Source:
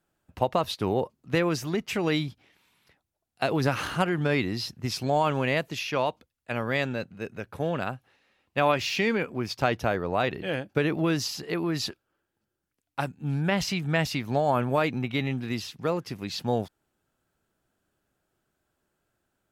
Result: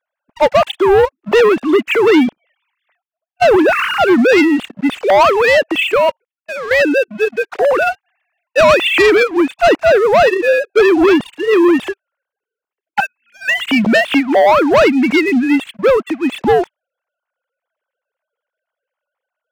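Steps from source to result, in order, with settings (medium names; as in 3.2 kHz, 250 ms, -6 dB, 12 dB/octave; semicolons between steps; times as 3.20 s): formants replaced by sine waves; 5.87–6.80 s: level held to a coarse grid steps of 14 dB; 13.00–13.64 s: high-pass 1.1 kHz 24 dB/octave; waveshaping leveller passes 3; trim +8 dB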